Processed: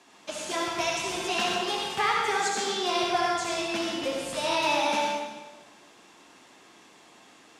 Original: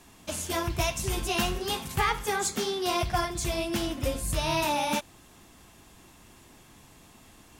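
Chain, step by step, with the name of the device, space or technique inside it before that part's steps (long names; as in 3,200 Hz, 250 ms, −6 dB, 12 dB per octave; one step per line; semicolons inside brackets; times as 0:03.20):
supermarket ceiling speaker (band-pass filter 340–6,200 Hz; convolution reverb RT60 1.3 s, pre-delay 57 ms, DRR −1 dB)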